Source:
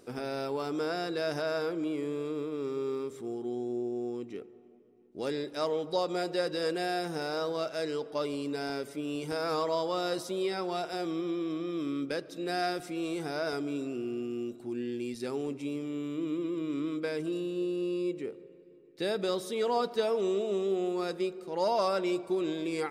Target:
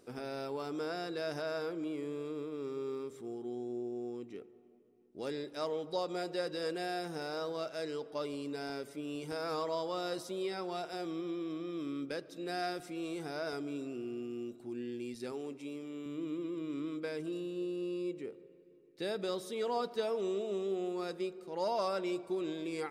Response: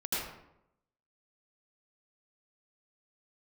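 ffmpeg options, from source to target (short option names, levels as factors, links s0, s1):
-filter_complex "[0:a]asettb=1/sr,asplit=3[s0][s1][s2];[s0]atrim=end=15.324[s3];[s1]atrim=start=15.32:end=16.06,asetpts=PTS-STARTPTS,afade=t=in:d=0.004:c=qsin,afade=t=out:st=0.736:d=0.004:c=qsin,highpass=f=260:p=1[s4];[s2]atrim=start=16.056[s5];[s3][s4]acrossfade=d=0.004:c1=hsin:c2=qsin[s6];[s6][s5]acrossfade=d=0.004:c1=qsin:c2=hsin,volume=0.531"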